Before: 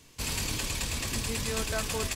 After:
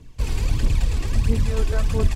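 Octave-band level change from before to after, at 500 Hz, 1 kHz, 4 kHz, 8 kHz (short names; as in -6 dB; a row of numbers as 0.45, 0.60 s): +6.0, +1.0, -4.5, -7.5 dB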